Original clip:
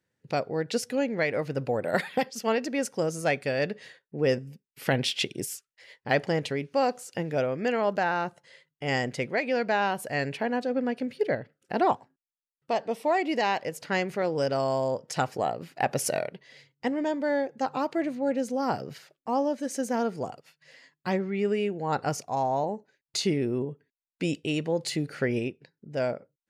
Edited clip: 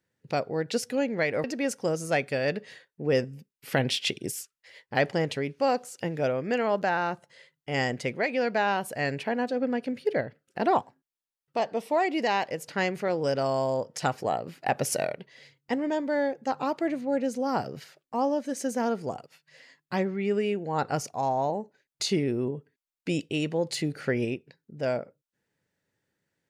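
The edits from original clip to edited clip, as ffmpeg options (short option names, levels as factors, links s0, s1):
-filter_complex "[0:a]asplit=2[s0][s1];[s0]atrim=end=1.442[s2];[s1]atrim=start=2.578[s3];[s2][s3]acrossfade=d=0.004:c1=hsin:c2=hsin"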